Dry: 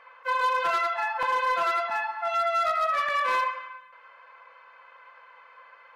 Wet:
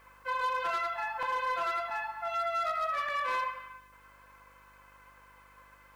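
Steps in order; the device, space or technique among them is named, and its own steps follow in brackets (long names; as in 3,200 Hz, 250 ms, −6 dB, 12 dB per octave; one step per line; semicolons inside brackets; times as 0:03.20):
video cassette with head-switching buzz (hum with harmonics 50 Hz, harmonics 36, −59 dBFS −6 dB per octave; white noise bed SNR 37 dB)
level −6.5 dB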